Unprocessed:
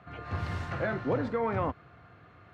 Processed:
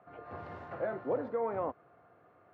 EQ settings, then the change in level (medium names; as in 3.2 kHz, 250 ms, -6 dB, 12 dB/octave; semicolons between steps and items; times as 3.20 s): band-pass filter 580 Hz, Q 1.2; -1.0 dB